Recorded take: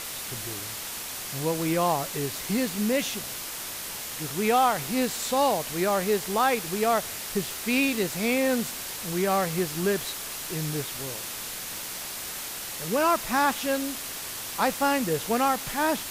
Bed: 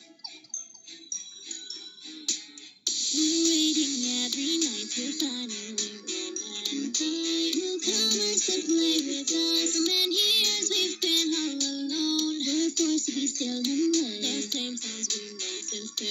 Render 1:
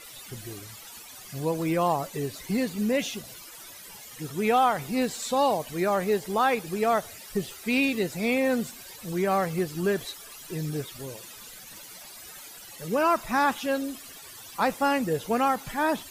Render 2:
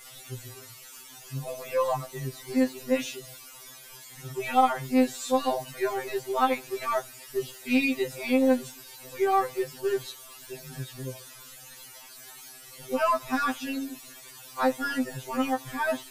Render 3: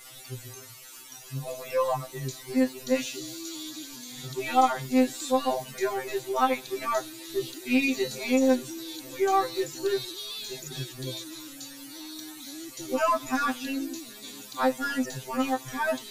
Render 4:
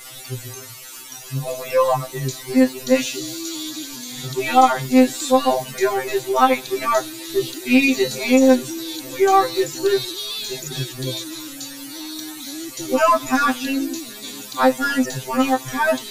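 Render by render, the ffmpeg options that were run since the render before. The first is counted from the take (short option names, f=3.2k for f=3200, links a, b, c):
-af "afftdn=nr=15:nf=-36"
-af "aeval=exprs='0.266*(cos(1*acos(clip(val(0)/0.266,-1,1)))-cos(1*PI/2))+0.0168*(cos(2*acos(clip(val(0)/0.266,-1,1)))-cos(2*PI/2))':c=same,afftfilt=real='re*2.45*eq(mod(b,6),0)':imag='im*2.45*eq(mod(b,6),0)':win_size=2048:overlap=0.75"
-filter_complex "[1:a]volume=-15dB[a];[0:a][a]amix=inputs=2:normalize=0"
-af "volume=9dB,alimiter=limit=-2dB:level=0:latency=1"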